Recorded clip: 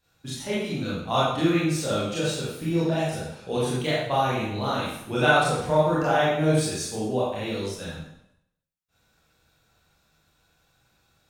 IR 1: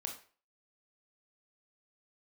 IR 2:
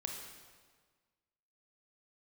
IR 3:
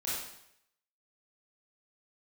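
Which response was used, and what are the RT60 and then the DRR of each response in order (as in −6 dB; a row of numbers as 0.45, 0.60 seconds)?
3; 0.40, 1.6, 0.75 seconds; 2.0, 1.5, −9.0 decibels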